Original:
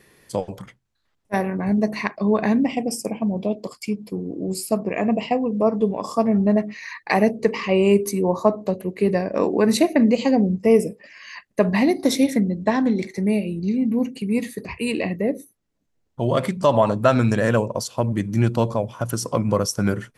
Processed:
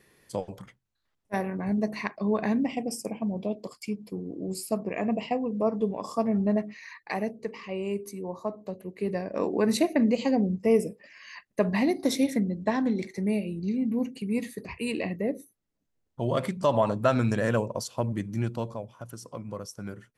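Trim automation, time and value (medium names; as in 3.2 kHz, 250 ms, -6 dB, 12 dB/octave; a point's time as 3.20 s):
6.56 s -7 dB
7.47 s -15 dB
8.42 s -15 dB
9.59 s -6.5 dB
18.04 s -6.5 dB
19.15 s -17 dB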